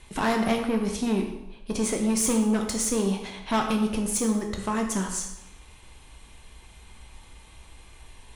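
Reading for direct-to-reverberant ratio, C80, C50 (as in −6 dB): 2.5 dB, 8.0 dB, 6.0 dB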